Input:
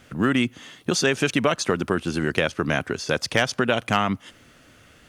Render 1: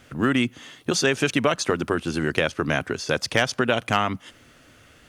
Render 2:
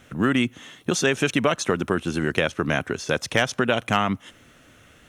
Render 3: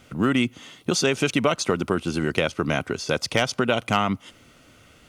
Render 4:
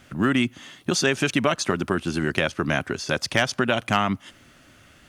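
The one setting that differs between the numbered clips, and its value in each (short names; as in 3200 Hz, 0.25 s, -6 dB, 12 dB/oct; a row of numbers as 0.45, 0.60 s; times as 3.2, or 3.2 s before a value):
notch, frequency: 190, 4700, 1700, 470 Hz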